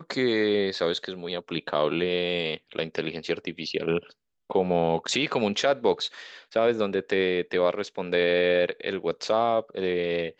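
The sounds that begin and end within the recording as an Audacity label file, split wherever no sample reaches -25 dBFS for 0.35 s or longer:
4.510000	6.070000	sound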